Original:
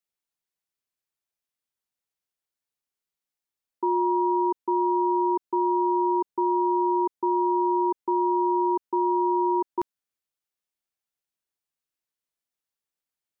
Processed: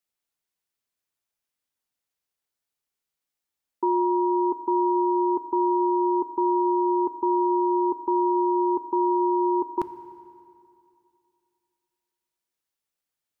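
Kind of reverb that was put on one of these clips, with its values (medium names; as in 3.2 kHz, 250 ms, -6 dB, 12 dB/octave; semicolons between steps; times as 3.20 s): FDN reverb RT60 2.5 s, high-frequency decay 0.9×, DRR 11.5 dB; trim +2.5 dB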